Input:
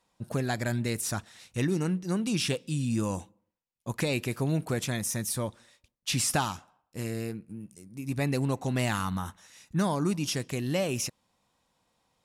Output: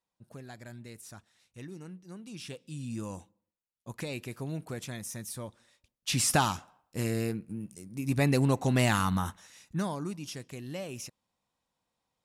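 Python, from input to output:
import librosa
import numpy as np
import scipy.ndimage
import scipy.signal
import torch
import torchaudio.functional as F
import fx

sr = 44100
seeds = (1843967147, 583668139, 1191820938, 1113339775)

y = fx.gain(x, sr, db=fx.line((2.26, -16.5), (2.86, -8.5), (5.47, -8.5), (6.45, 3.0), (9.27, 3.0), (10.17, -10.0)))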